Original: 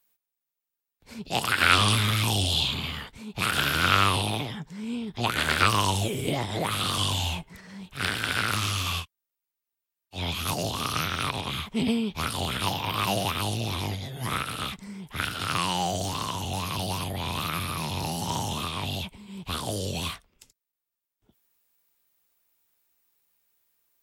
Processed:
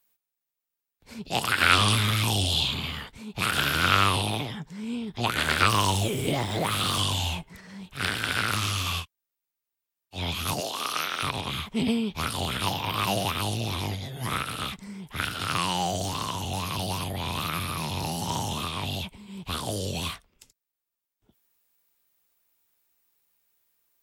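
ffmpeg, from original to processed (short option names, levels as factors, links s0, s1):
-filter_complex "[0:a]asettb=1/sr,asplit=3[s0][s1][s2];[s0]atrim=end=5.704[s3];[s1]atrim=start=5.7:end=7.01,asetpts=PTS-STARTPTS,afade=t=in:d=0.004:c=qsin,afade=t=out:st=1.306:d=0.004:c=qsin,aeval=exprs='val(0)+0.5*0.015*sgn(val(0))':c=same[s4];[s2]atrim=start=7.006[s5];[s3][s4]acrossfade=d=0.004:c1=hsin:c2=qsin[s6];[s6][s5]acrossfade=d=0.004:c1=qsin:c2=hsin,asettb=1/sr,asplit=3[s7][s8][s9];[s7]atrim=end=10.604[s10];[s8]atrim=start=10.6:end=11.23,asetpts=PTS-STARTPTS,afade=t=in:d=0.004:c=qsin,afade=t=out:st=0.626:d=0.004:c=qsin,highpass=410[s11];[s9]atrim=start=11.226[s12];[s10][s11]acrossfade=d=0.004:c1=hsin:c2=qsin[s13];[s13][s12]acrossfade=d=0.004:c1=qsin:c2=hsin"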